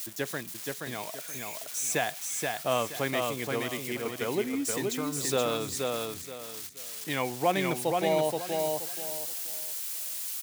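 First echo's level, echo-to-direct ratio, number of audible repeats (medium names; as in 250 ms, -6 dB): -3.5 dB, -3.0 dB, 3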